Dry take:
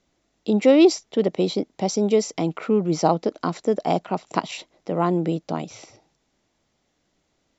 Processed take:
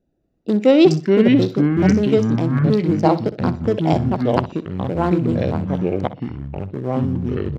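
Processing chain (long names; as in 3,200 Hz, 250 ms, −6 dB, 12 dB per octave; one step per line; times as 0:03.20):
adaptive Wiener filter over 41 samples
high-shelf EQ 5,300 Hz +5 dB
notch filter 1,200 Hz, Q 12
delay with pitch and tempo change per echo 207 ms, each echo −5 semitones, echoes 3
on a send: repeating echo 62 ms, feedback 29%, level −15 dB
on the sum: level +2.5 dB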